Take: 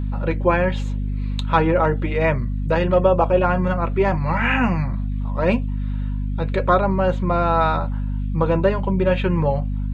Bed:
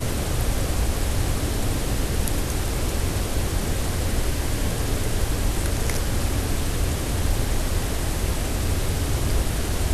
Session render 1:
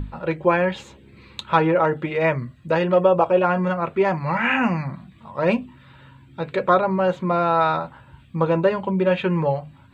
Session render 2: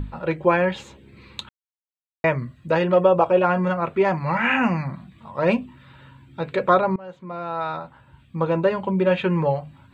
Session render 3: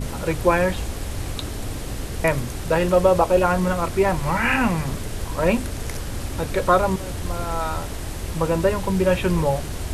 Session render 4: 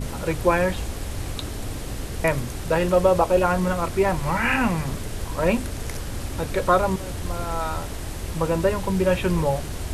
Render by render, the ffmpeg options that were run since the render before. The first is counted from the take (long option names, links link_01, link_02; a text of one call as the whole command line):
ffmpeg -i in.wav -af "bandreject=frequency=50:width_type=h:width=6,bandreject=frequency=100:width_type=h:width=6,bandreject=frequency=150:width_type=h:width=6,bandreject=frequency=200:width_type=h:width=6,bandreject=frequency=250:width_type=h:width=6" out.wav
ffmpeg -i in.wav -filter_complex "[0:a]asplit=4[link_01][link_02][link_03][link_04];[link_01]atrim=end=1.49,asetpts=PTS-STARTPTS,afade=type=out:start_time=1.486:duration=0.004:curve=hsin[link_05];[link_02]atrim=start=1.49:end=2.24,asetpts=PTS-STARTPTS,volume=0[link_06];[link_03]atrim=start=2.24:end=6.96,asetpts=PTS-STARTPTS,afade=type=in:duration=0.004:curve=hsin,afade=type=out:start_time=4.716:duration=0.004:curve=hsin:silence=0.0794328[link_07];[link_04]atrim=start=6.96,asetpts=PTS-STARTPTS,afade=type=in:duration=2:silence=0.0794328[link_08];[link_05][link_06][link_07][link_08]concat=n=4:v=0:a=1" out.wav
ffmpeg -i in.wav -i bed.wav -filter_complex "[1:a]volume=-5.5dB[link_01];[0:a][link_01]amix=inputs=2:normalize=0" out.wav
ffmpeg -i in.wav -af "volume=-1.5dB" out.wav